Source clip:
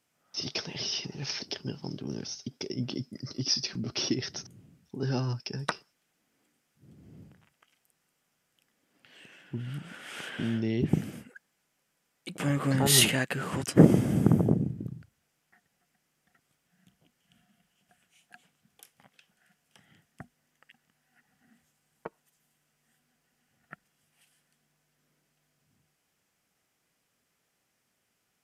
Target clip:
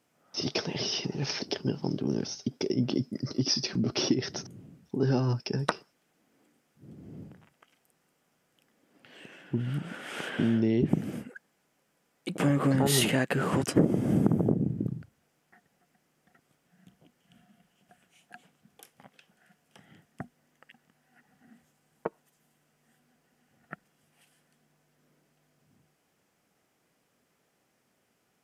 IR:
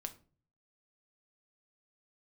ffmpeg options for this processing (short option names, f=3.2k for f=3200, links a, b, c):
-af "equalizer=f=380:w=0.32:g=8.5,acompressor=threshold=-21dB:ratio=5"